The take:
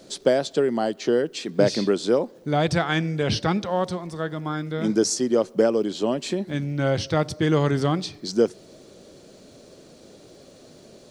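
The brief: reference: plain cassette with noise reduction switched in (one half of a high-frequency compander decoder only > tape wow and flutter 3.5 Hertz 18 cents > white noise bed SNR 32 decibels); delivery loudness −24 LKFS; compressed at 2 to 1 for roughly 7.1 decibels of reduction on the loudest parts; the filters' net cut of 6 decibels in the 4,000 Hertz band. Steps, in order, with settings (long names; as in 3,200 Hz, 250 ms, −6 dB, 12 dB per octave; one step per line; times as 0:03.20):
parametric band 4,000 Hz −8 dB
downward compressor 2 to 1, threshold −27 dBFS
one half of a high-frequency compander decoder only
tape wow and flutter 3.5 Hz 18 cents
white noise bed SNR 32 dB
level +5 dB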